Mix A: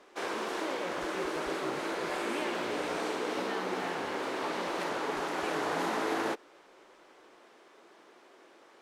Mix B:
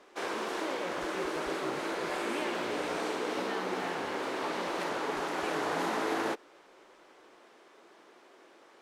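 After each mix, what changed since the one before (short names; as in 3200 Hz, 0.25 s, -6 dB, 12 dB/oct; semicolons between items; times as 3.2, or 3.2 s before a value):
none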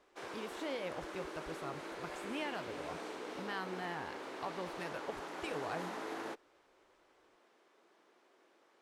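background -11.0 dB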